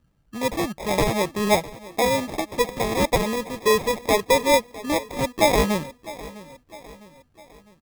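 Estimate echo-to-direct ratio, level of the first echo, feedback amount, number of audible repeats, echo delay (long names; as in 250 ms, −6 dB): −17.0 dB, −18.0 dB, 48%, 3, 655 ms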